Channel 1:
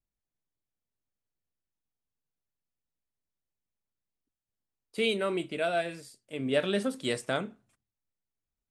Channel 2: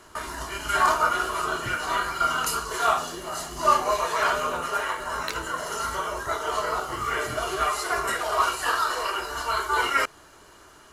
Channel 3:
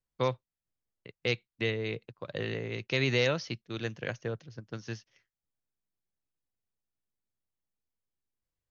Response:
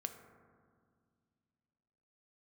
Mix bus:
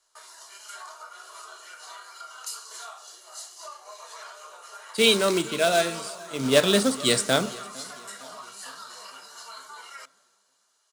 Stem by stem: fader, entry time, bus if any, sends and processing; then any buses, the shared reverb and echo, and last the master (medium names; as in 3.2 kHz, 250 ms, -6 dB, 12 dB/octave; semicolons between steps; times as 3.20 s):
+3.0 dB, 0.00 s, send -11.5 dB, echo send -17 dB, short-mantissa float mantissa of 2-bit
-13.0 dB, 0.00 s, send -7 dB, no echo send, compression 6:1, threshold -26 dBFS, peak gain reduction 11.5 dB; high-pass 500 Hz 24 dB/octave
mute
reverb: on, RT60 2.0 s, pre-delay 3 ms
echo: feedback delay 455 ms, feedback 56%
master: high-order bell 6 kHz +9 dB; three bands expanded up and down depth 40%